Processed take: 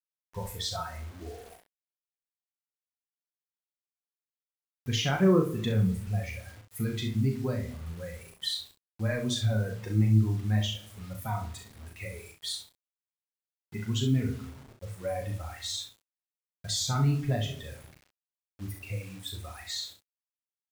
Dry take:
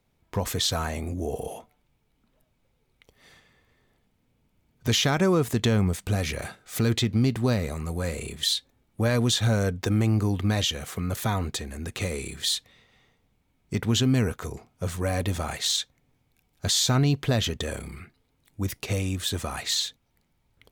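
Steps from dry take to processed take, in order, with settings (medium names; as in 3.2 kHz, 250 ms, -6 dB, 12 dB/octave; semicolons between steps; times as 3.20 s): expander on every frequency bin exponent 2; reverberation RT60 0.75 s, pre-delay 6 ms, DRR 9 dB; flange 1.2 Hz, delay 6.1 ms, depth 6.7 ms, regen -44%; treble shelf 3.4 kHz -4 dB; bit crusher 9-bit; early reflections 37 ms -5.5 dB, 65 ms -9 dB; trim +1.5 dB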